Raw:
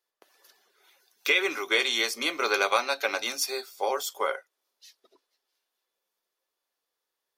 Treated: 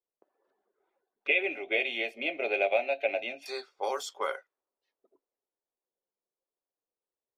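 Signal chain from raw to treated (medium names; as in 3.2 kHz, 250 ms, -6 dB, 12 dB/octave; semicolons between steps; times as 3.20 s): level-controlled noise filter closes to 620 Hz, open at -24 dBFS; 1.27–3.46 s: FFT filter 470 Hz 0 dB, 660 Hz +12 dB, 1.1 kHz -24 dB, 2.6 kHz +6 dB, 5.1 kHz -29 dB, 10 kHz -24 dB; trim -4 dB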